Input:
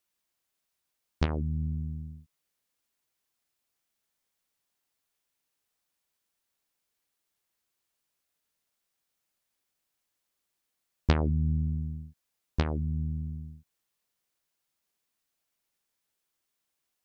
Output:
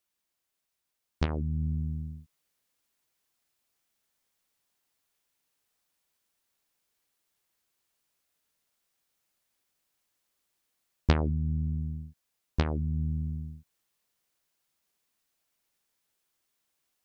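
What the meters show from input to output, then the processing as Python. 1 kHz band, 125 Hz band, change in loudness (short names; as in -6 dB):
0.0 dB, 0.0 dB, -0.5 dB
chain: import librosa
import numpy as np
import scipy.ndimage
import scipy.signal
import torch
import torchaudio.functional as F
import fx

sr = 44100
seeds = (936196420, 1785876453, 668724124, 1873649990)

y = fx.rider(x, sr, range_db=3, speed_s=0.5)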